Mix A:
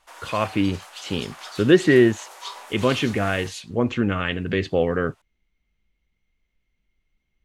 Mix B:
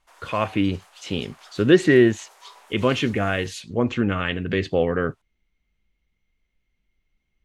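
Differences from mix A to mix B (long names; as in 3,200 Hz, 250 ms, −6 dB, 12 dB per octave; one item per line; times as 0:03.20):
background −8.0 dB
reverb: off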